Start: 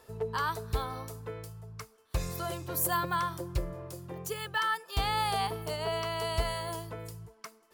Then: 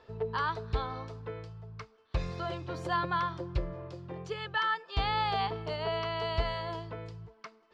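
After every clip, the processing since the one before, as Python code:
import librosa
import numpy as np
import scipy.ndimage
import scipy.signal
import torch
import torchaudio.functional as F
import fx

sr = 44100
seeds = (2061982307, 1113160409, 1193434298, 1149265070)

y = scipy.signal.sosfilt(scipy.signal.butter(4, 4400.0, 'lowpass', fs=sr, output='sos'), x)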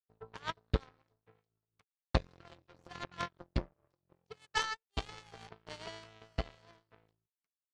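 y = fx.rotary_switch(x, sr, hz=5.5, then_hz=0.85, switch_at_s=3.34)
y = fx.power_curve(y, sr, exponent=3.0)
y = y * librosa.db_to_amplitude(8.0)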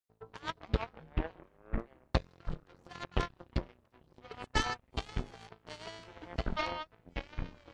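y = fx.echo_pitch(x, sr, ms=130, semitones=-6, count=3, db_per_echo=-3.0)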